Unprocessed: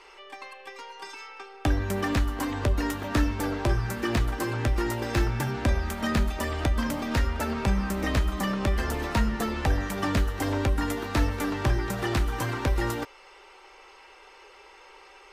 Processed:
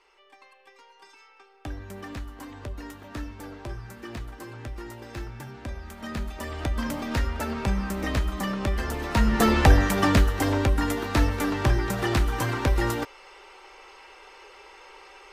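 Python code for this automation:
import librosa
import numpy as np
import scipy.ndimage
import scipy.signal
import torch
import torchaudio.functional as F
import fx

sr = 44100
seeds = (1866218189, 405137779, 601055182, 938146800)

y = fx.gain(x, sr, db=fx.line((5.75, -11.5), (6.88, -1.0), (9.05, -1.0), (9.48, 10.0), (10.65, 2.5)))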